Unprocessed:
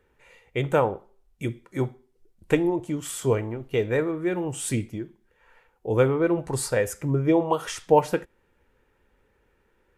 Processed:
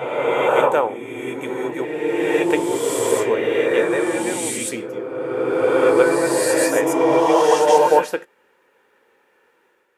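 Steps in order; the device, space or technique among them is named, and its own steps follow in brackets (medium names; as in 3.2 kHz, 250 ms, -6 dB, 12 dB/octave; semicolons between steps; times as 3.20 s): ghost voice (reverse; reverberation RT60 2.9 s, pre-delay 115 ms, DRR -5 dB; reverse; high-pass 430 Hz 12 dB/octave); trim +4 dB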